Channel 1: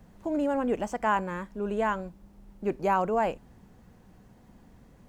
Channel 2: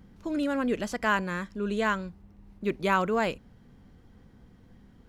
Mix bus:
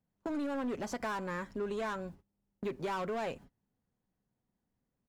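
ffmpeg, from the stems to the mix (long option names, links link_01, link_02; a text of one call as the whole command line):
ffmpeg -i stem1.wav -i stem2.wav -filter_complex "[0:a]agate=range=-28dB:threshold=-43dB:ratio=16:detection=peak,highpass=62,asoftclip=type=hard:threshold=-30.5dB,volume=-1dB,asplit=2[link_01][link_02];[1:a]aecho=1:1:7.3:0.81,alimiter=limit=-20.5dB:level=0:latency=1:release=468,volume=-4.5dB[link_03];[link_02]apad=whole_len=224587[link_04];[link_03][link_04]sidechaingate=range=-33dB:threshold=-53dB:ratio=16:detection=peak[link_05];[link_01][link_05]amix=inputs=2:normalize=0,acompressor=threshold=-36dB:ratio=2.5" out.wav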